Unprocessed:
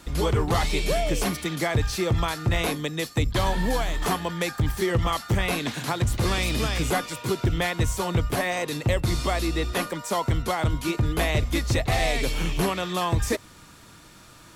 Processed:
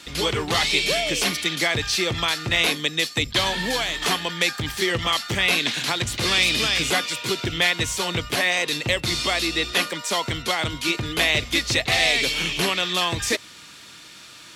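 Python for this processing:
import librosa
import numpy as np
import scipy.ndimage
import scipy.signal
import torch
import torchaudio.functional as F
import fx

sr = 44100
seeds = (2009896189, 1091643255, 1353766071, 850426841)

y = fx.weighting(x, sr, curve='D')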